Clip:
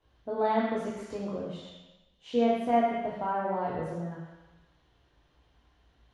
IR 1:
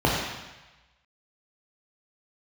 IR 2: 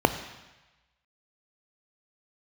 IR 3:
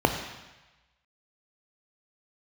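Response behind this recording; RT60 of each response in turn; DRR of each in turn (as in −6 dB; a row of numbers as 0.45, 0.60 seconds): 1; 1.1, 1.1, 1.1 seconds; −3.5, 10.0, 5.5 decibels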